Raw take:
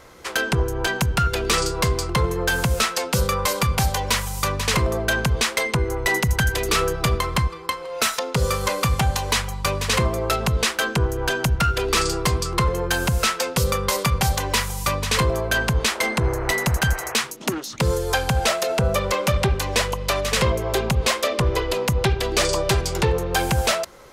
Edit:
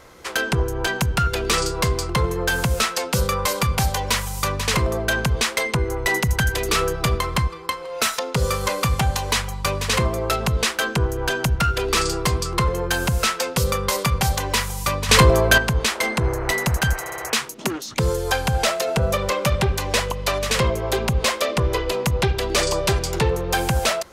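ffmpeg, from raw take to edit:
-filter_complex "[0:a]asplit=6[s0][s1][s2][s3][s4][s5];[s0]atrim=end=15.092[s6];[s1]atrim=start=15.088:end=15.582,asetpts=PTS-STARTPTS,volume=2.24[s7];[s2]atrim=start=15.578:end=17.062[s8];[s3]atrim=start=16.998:end=17.062[s9];[s4]atrim=start=16.998:end=17.062[s10];[s5]atrim=start=16.998[s11];[s6][s7]acrossfade=d=0.004:c1=hsin:c2=hsin[s12];[s12][s8]acrossfade=d=0.004:c1=hsin:c2=hsin[s13];[s13][s9]acrossfade=d=0.004:c1=hsin:c2=hsin[s14];[s14][s10]acrossfade=d=0.004:c1=hsin:c2=hsin[s15];[s15][s11]acrossfade=d=0.004:c1=hsin:c2=hsin"

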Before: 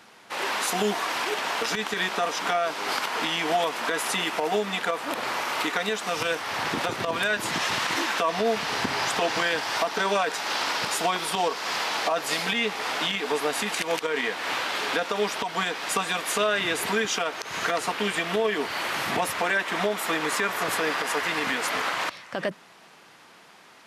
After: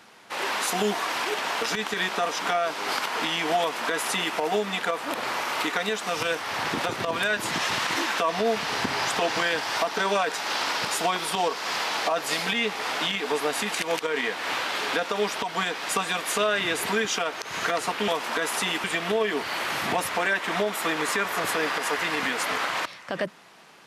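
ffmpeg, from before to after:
-filter_complex "[0:a]asplit=3[s0][s1][s2];[s0]atrim=end=18.082[s3];[s1]atrim=start=3.598:end=4.362[s4];[s2]atrim=start=18.078[s5];[s3][s4]acrossfade=d=0.004:c1=hsin:c2=hsin[s6];[s6][s5]acrossfade=d=0.004:c1=hsin:c2=hsin"

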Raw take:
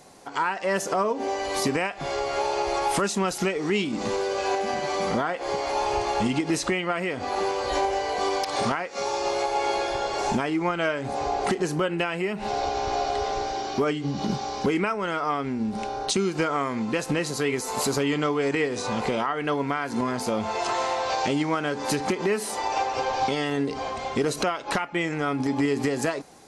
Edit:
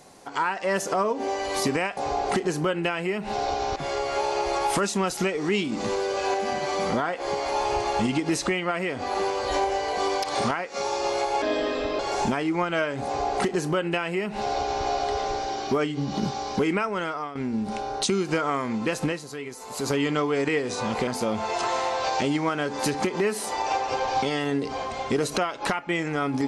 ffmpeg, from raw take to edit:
-filter_complex "[0:a]asplit=9[s0][s1][s2][s3][s4][s5][s6][s7][s8];[s0]atrim=end=1.972[s9];[s1]atrim=start=11.118:end=12.912[s10];[s2]atrim=start=1.968:end=9.634[s11];[s3]atrim=start=9.63:end=10.06,asetpts=PTS-STARTPTS,asetrate=33075,aresample=44100[s12];[s4]atrim=start=10.056:end=15.42,asetpts=PTS-STARTPTS,afade=t=out:st=4.994:d=0.37:silence=0.223872[s13];[s5]atrim=start=15.42:end=17.27,asetpts=PTS-STARTPTS,afade=t=in:d=0.004:c=hsin:silence=0.223872,afade=t=out:st=1.71:d=0.14:silence=0.316228[s14];[s6]atrim=start=17.27:end=17.82,asetpts=PTS-STARTPTS,volume=0.316[s15];[s7]atrim=start=17.82:end=19.142,asetpts=PTS-STARTPTS,afade=t=in:d=0.14:silence=0.316228[s16];[s8]atrim=start=20.128[s17];[s9][s10]acrossfade=d=0.004:c1=hsin:c2=hsin[s18];[s18][s11]acrossfade=d=0.004:c1=hsin:c2=hsin[s19];[s19][s12]acrossfade=d=0.004:c1=hsin:c2=hsin[s20];[s13][s14][s15][s16]concat=n=4:v=0:a=1[s21];[s20][s21]acrossfade=d=0.004:c1=hsin:c2=hsin[s22];[s22][s17]acrossfade=d=0.004:c1=hsin:c2=hsin"

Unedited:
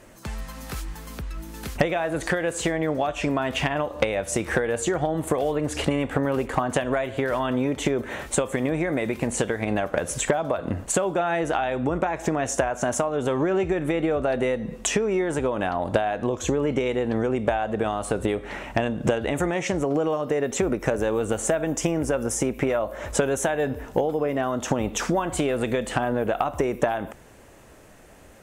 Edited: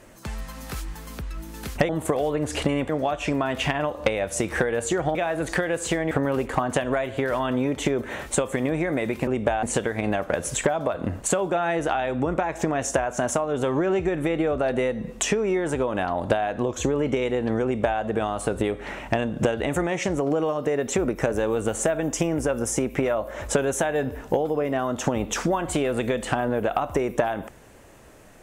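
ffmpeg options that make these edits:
-filter_complex "[0:a]asplit=7[s0][s1][s2][s3][s4][s5][s6];[s0]atrim=end=1.892[s7];[s1]atrim=start=5.108:end=6.112[s8];[s2]atrim=start=2.848:end=5.112[s9];[s3]atrim=start=1.888:end=2.852[s10];[s4]atrim=start=6.108:end=9.272[s11];[s5]atrim=start=17.278:end=17.642[s12];[s6]atrim=start=9.268[s13];[s7][s8]acrossfade=d=0.004:c1=hsin:c2=hsin[s14];[s14][s9]acrossfade=d=0.004:c1=hsin:c2=hsin[s15];[s15][s10]acrossfade=d=0.004:c1=hsin:c2=hsin[s16];[s16][s11]acrossfade=d=0.004:c1=hsin:c2=hsin[s17];[s17][s12]acrossfade=d=0.004:c1=hsin:c2=hsin[s18];[s18][s13]acrossfade=d=0.004:c1=hsin:c2=hsin"

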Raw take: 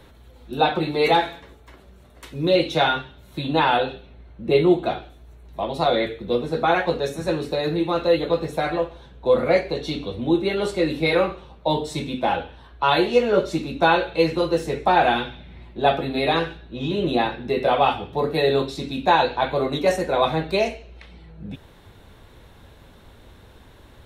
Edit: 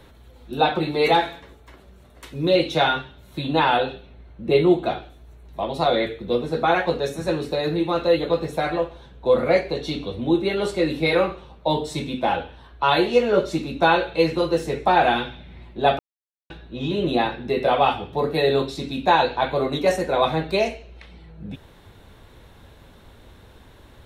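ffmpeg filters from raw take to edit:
-filter_complex "[0:a]asplit=3[s0][s1][s2];[s0]atrim=end=15.99,asetpts=PTS-STARTPTS,afade=t=out:st=15.986:d=0.004:c=hsin[s3];[s1]atrim=start=15.99:end=16.5,asetpts=PTS-STARTPTS,volume=0[s4];[s2]atrim=start=16.5,asetpts=PTS-STARTPTS,afade=t=in:d=0.004:c=hsin[s5];[s3][s4][s5]concat=n=3:v=0:a=1"

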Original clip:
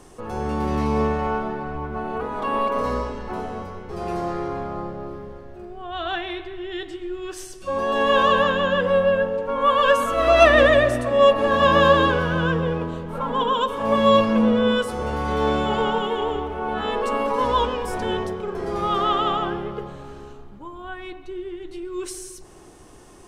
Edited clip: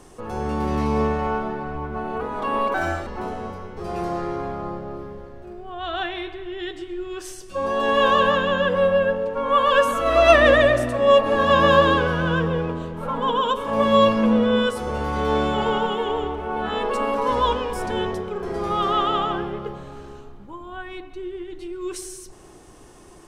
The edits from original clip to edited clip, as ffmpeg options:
-filter_complex "[0:a]asplit=3[s0][s1][s2];[s0]atrim=end=2.744[s3];[s1]atrim=start=2.74:end=3.19,asetpts=PTS-STARTPTS,asetrate=60417,aresample=44100,atrim=end_sample=14485,asetpts=PTS-STARTPTS[s4];[s2]atrim=start=3.186[s5];[s3][s4]acrossfade=d=0.004:c1=hsin:c2=hsin[s6];[s6][s5]acrossfade=d=0.004:c1=hsin:c2=hsin"

